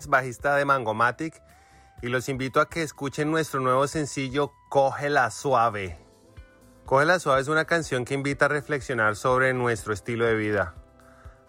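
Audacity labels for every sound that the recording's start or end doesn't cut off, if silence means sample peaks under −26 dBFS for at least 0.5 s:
2.050000	5.870000	sound
6.890000	10.670000	sound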